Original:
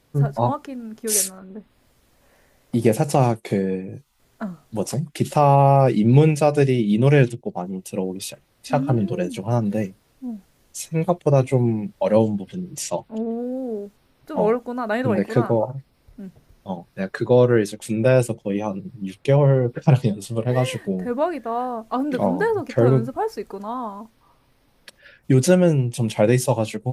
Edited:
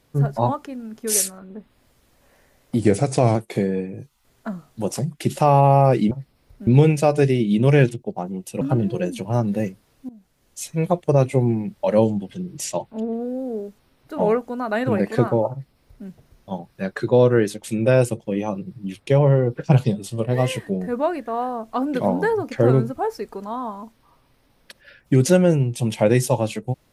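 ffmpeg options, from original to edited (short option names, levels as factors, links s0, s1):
-filter_complex "[0:a]asplit=7[s0][s1][s2][s3][s4][s5][s6];[s0]atrim=end=2.794[s7];[s1]atrim=start=2.79:end=3.3,asetpts=PTS-STARTPTS,asetrate=40131,aresample=44100,atrim=end_sample=24715,asetpts=PTS-STARTPTS[s8];[s2]atrim=start=3.296:end=6.062[s9];[s3]atrim=start=15.688:end=16.252[s10];[s4]atrim=start=6.058:end=8.002[s11];[s5]atrim=start=8.788:end=10.27,asetpts=PTS-STARTPTS,afade=t=out:st=1.478:d=0.004:c=hsin:silence=0.112202[s12];[s6]atrim=start=10.27,asetpts=PTS-STARTPTS,afade=t=in:d=0.56:silence=0.112202[s13];[s7][s8]acrossfade=d=0.004:c1=hsin:c2=hsin[s14];[s14][s9]acrossfade=d=0.004:c1=hsin:c2=hsin[s15];[s15][s10]acrossfade=d=0.004:c1=hsin:c2=hsin[s16];[s16][s11]acrossfade=d=0.004:c1=hsin:c2=hsin[s17];[s12][s13]concat=n=2:v=0:a=1[s18];[s17][s18]acrossfade=d=0.004:c1=hsin:c2=hsin"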